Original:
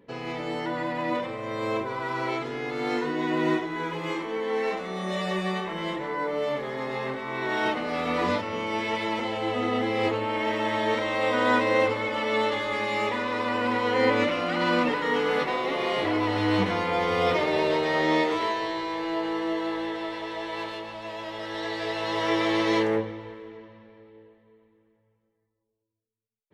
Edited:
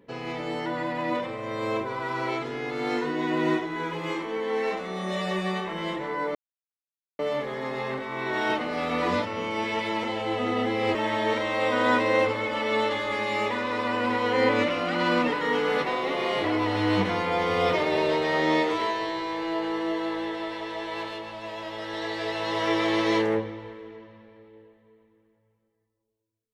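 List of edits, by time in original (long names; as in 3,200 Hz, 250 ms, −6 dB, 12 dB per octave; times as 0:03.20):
0:06.35: splice in silence 0.84 s
0:10.11–0:10.56: remove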